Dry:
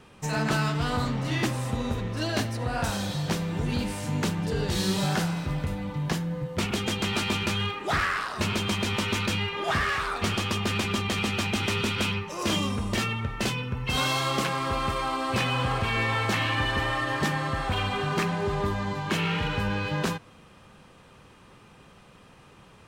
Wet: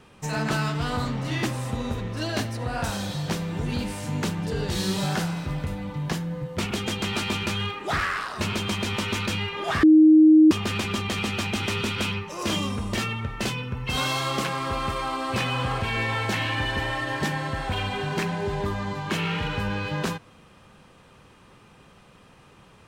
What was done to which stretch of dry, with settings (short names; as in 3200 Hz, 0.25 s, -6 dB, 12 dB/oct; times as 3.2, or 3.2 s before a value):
9.83–10.51 bleep 312 Hz -10 dBFS
15.81–18.66 notch 1200 Hz, Q 9.4